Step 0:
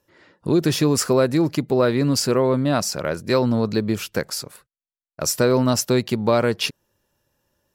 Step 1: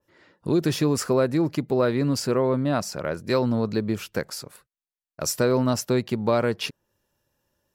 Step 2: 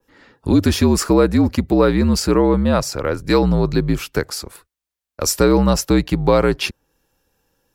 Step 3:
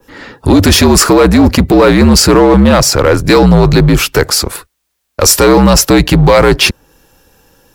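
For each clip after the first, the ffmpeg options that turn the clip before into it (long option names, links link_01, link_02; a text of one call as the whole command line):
ffmpeg -i in.wav -af "adynamicequalizer=threshold=0.0126:dfrequency=2700:dqfactor=0.7:tfrequency=2700:tqfactor=0.7:attack=5:release=100:ratio=0.375:range=3:mode=cutabove:tftype=highshelf,volume=-3.5dB" out.wav
ffmpeg -i in.wav -af "afreqshift=-60,volume=7.5dB" out.wav
ffmpeg -i in.wav -filter_complex "[0:a]apsyclip=16.5dB,asplit=2[link_01][link_02];[link_02]asoftclip=type=hard:threshold=-15.5dB,volume=-3.5dB[link_03];[link_01][link_03]amix=inputs=2:normalize=0,volume=-2.5dB" out.wav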